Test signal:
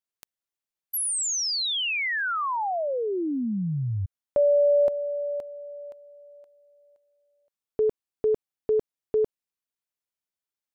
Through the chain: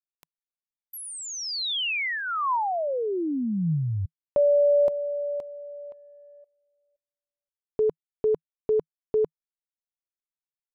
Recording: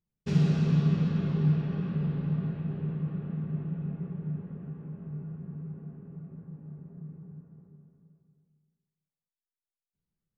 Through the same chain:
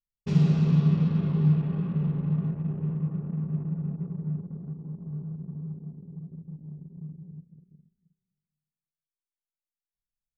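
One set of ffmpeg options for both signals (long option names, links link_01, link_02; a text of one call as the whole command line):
ffmpeg -i in.wav -filter_complex "[0:a]acrossover=split=4300[link_01][link_02];[link_02]acompressor=threshold=-39dB:ratio=4:attack=1:release=60[link_03];[link_01][link_03]amix=inputs=2:normalize=0,anlmdn=0.0398,equalizer=frequency=160:width_type=o:width=0.33:gain=4,equalizer=frequency=1000:width_type=o:width=0.33:gain=4,equalizer=frequency=1600:width_type=o:width=0.33:gain=-5" out.wav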